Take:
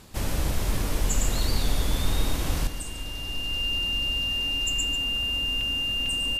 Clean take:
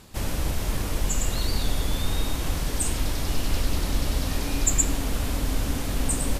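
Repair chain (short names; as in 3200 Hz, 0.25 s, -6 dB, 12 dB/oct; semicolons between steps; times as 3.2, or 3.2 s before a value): notch 2800 Hz, Q 30; interpolate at 5.61/6.06, 2.3 ms; inverse comb 0.144 s -10.5 dB; gain 0 dB, from 2.67 s +10.5 dB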